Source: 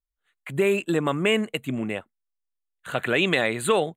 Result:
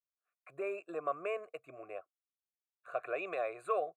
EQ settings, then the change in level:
formant filter a
phaser with its sweep stopped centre 850 Hz, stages 6
+2.0 dB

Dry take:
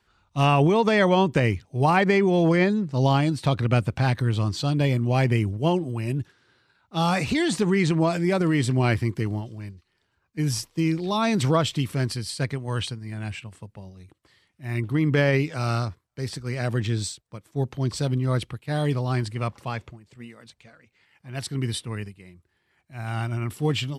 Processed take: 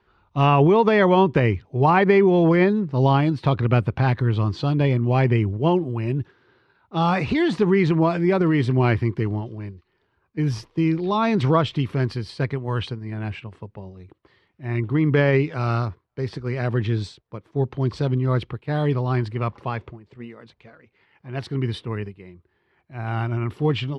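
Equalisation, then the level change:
graphic EQ with 15 bands 400 Hz +7 dB, 1,000 Hz +4 dB, 10,000 Hz +8 dB
dynamic equaliser 440 Hz, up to −4 dB, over −30 dBFS, Q 0.75
high-frequency loss of the air 260 metres
+3.0 dB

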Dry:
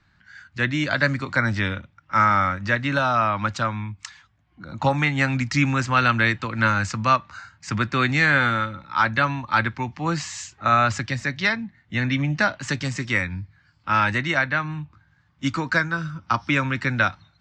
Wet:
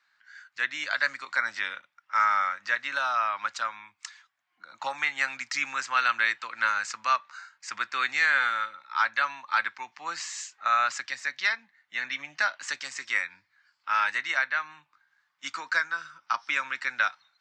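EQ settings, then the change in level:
high-pass filter 1,200 Hz 12 dB per octave
parametric band 3,000 Hz −3 dB 0.96 octaves
−2.0 dB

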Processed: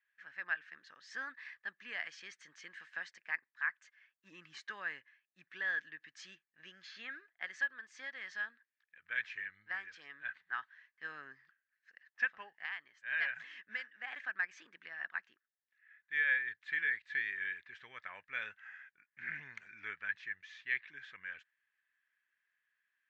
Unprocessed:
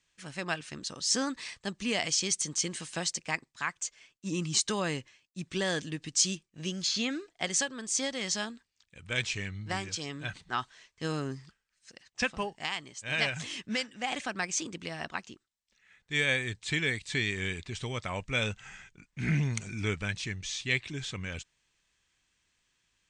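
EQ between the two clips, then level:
resonant band-pass 1,700 Hz, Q 6.7
high-frequency loss of the air 120 metres
+4.0 dB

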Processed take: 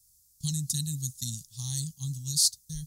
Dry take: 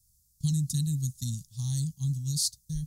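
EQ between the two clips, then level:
tilt shelving filter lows −5.5 dB, about 680 Hz
0.0 dB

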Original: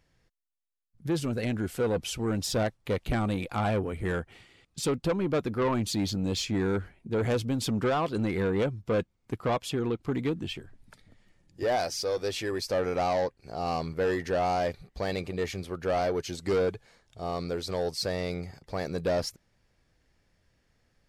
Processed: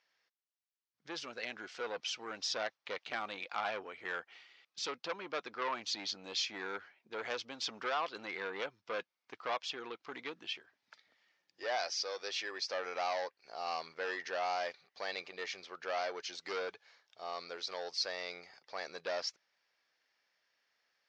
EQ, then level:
Bessel high-pass filter 1,200 Hz, order 2
low-pass with resonance 5,900 Hz, resonance Q 2.6
high-frequency loss of the air 190 metres
0.0 dB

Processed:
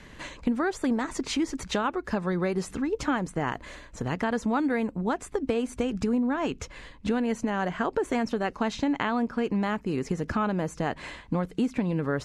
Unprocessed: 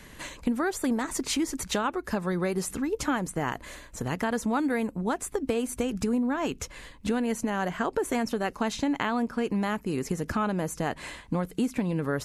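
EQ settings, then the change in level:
high-frequency loss of the air 82 metres
+1.0 dB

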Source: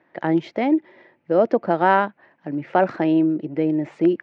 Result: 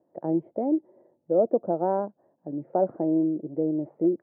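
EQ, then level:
transistor ladder low-pass 740 Hz, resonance 35%
0.0 dB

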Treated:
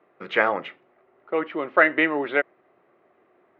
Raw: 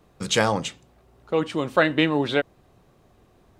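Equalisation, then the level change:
dynamic equaliser 1,800 Hz, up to +4 dB, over −34 dBFS, Q 1.3
loudspeaker in its box 330–2,600 Hz, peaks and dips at 360 Hz +7 dB, 630 Hz +5 dB, 1,300 Hz +6 dB, 2,000 Hz +8 dB
−3.5 dB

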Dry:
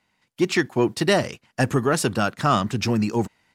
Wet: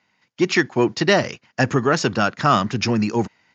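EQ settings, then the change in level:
high-pass filter 92 Hz
Chebyshev low-pass with heavy ripple 6,900 Hz, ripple 3 dB
+5.0 dB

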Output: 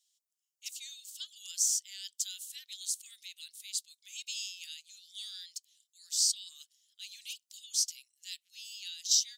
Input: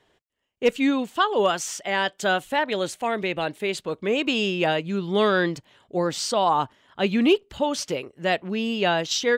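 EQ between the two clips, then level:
inverse Chebyshev high-pass filter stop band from 890 Hz, stop band 80 dB
+4.5 dB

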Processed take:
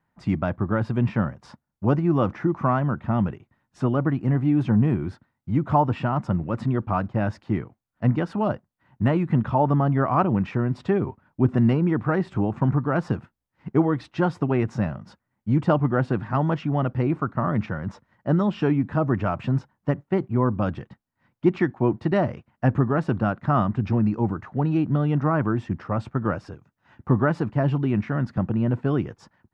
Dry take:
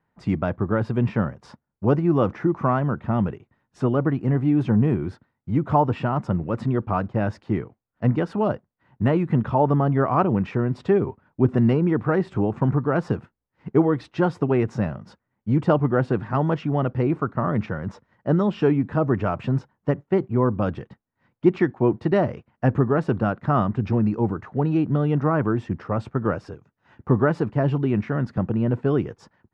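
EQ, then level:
parametric band 440 Hz −6 dB 0.51 octaves
0.0 dB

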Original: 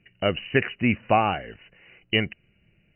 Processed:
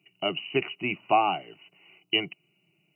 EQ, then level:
high-pass filter 170 Hz 24 dB per octave
high-shelf EQ 2,300 Hz +10 dB
phaser with its sweep stopped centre 340 Hz, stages 8
−1.0 dB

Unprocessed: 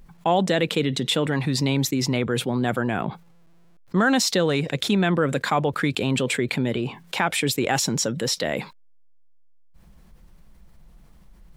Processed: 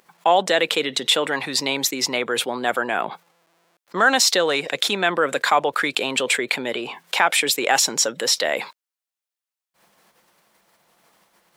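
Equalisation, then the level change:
high-pass filter 550 Hz 12 dB per octave
+6.0 dB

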